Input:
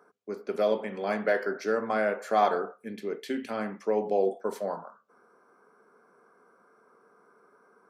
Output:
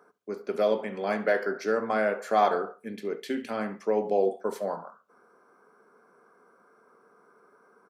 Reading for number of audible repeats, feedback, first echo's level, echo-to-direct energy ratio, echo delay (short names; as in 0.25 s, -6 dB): 2, 28%, -20.0 dB, -19.5 dB, 69 ms